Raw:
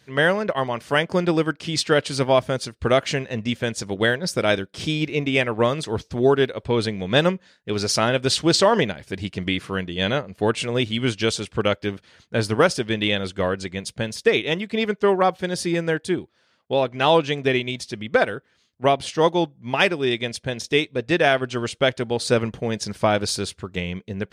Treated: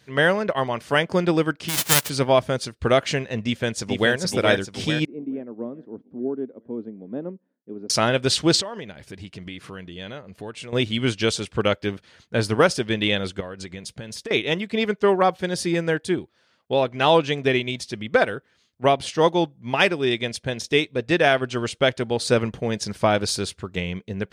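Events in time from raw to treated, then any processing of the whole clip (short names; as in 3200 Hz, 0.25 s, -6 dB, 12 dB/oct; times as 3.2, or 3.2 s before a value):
1.68–2.08 spectral whitening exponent 0.1
3.45–4.13 echo throw 0.43 s, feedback 55%, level -4.5 dB
5.05–7.9 ladder band-pass 290 Hz, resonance 55%
8.61–10.73 compressor 2.5:1, threshold -38 dBFS
13.4–14.31 compressor 10:1, threshold -30 dBFS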